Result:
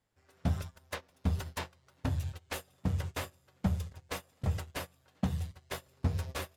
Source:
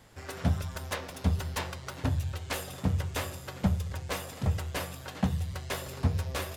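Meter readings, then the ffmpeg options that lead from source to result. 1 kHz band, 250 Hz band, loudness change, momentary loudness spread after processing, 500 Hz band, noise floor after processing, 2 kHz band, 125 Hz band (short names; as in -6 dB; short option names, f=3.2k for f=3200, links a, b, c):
-5.5 dB, -4.0 dB, -4.5 dB, 9 LU, -5.5 dB, -70 dBFS, -5.5 dB, -4.0 dB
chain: -af "agate=range=-21dB:threshold=-33dB:ratio=16:detection=peak,volume=-3.5dB"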